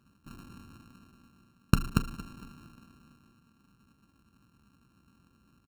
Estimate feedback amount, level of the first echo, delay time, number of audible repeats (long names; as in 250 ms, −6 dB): 40%, −17.0 dB, 230 ms, 3